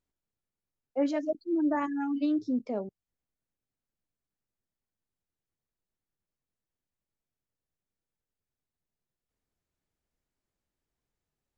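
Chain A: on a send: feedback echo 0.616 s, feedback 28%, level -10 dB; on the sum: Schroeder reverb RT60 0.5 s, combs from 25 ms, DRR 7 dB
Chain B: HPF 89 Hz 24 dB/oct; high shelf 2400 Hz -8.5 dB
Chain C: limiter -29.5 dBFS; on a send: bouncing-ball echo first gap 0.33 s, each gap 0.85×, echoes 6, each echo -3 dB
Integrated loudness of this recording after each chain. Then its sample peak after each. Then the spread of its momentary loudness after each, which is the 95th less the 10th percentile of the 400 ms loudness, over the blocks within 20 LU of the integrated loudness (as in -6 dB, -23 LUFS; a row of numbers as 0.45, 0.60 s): -29.5, -31.0, -35.0 LUFS; -16.0, -18.5, -22.0 dBFS; 15, 8, 14 LU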